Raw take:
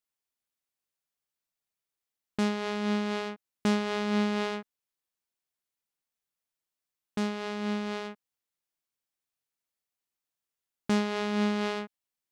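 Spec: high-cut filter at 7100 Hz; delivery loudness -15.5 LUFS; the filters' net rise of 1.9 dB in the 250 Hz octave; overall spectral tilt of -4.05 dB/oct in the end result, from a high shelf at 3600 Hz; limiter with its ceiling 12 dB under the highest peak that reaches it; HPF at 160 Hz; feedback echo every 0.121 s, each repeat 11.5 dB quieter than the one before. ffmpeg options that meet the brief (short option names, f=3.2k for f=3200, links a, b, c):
-af "highpass=160,lowpass=7.1k,equalizer=f=250:t=o:g=4,highshelf=f=3.6k:g=5,alimiter=limit=-22.5dB:level=0:latency=1,aecho=1:1:121|242|363:0.266|0.0718|0.0194,volume=19.5dB"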